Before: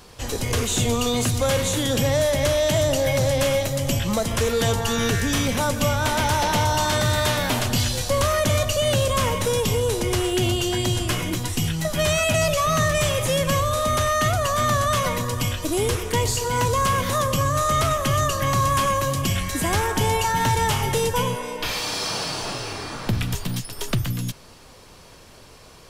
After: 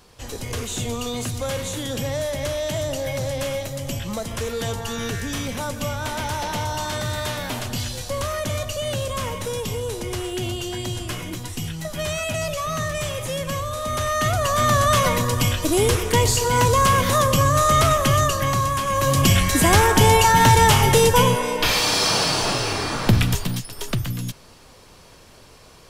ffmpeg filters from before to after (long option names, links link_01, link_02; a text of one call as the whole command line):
ffmpeg -i in.wav -af "volume=15dB,afade=type=in:start_time=13.8:duration=1.14:silence=0.334965,afade=type=out:start_time=18.01:duration=0.84:silence=0.398107,afade=type=in:start_time=18.85:duration=0.37:silence=0.281838,afade=type=out:start_time=23.14:duration=0.49:silence=0.398107" out.wav